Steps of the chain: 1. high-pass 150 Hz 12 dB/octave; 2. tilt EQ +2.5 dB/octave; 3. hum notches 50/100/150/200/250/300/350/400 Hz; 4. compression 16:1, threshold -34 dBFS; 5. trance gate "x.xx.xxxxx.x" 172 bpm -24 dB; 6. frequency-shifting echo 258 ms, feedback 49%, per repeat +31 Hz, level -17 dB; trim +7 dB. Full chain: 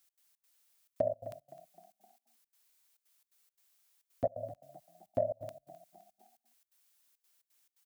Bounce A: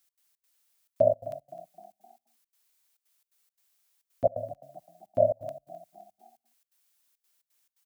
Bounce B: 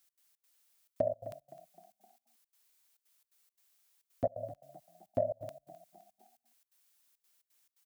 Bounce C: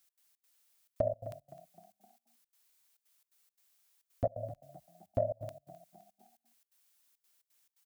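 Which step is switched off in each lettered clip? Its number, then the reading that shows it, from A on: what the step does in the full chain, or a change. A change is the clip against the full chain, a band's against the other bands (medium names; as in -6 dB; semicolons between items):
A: 4, mean gain reduction 6.0 dB; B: 3, 250 Hz band +1.5 dB; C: 1, 125 Hz band +7.0 dB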